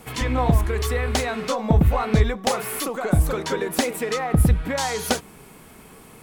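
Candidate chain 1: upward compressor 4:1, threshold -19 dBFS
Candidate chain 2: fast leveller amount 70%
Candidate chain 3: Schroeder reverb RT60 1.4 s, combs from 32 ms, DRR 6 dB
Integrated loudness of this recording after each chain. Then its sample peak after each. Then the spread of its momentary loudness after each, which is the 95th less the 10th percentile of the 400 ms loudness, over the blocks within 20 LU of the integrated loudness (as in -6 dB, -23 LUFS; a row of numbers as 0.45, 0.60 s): -22.0, -17.0, -21.5 LUFS; -6.5, -4.5, -5.0 dBFS; 10, 6, 7 LU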